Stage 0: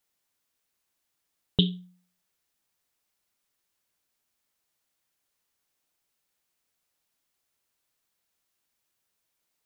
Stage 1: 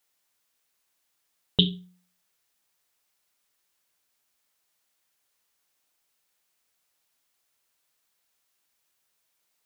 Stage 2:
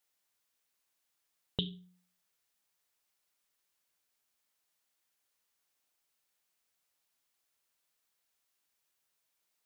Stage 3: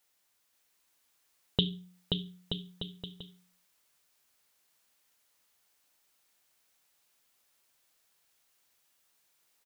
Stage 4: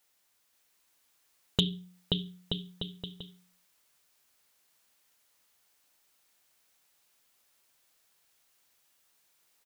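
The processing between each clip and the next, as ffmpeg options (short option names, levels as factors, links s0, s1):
-af "lowshelf=f=420:g=-5.5,bandreject=f=50:t=h:w=6,bandreject=f=100:t=h:w=6,bandreject=f=150:t=h:w=6,bandreject=f=200:t=h:w=6,bandreject=f=250:t=h:w=6,bandreject=f=300:t=h:w=6,bandreject=f=350:t=h:w=6,bandreject=f=400:t=h:w=6,volume=1.68"
-af "alimiter=limit=0.237:level=0:latency=1:release=397,volume=0.501"
-af "aecho=1:1:530|927.5|1226|1449|1617:0.631|0.398|0.251|0.158|0.1,volume=2.11"
-af "volume=6.68,asoftclip=hard,volume=0.15,volume=1.26"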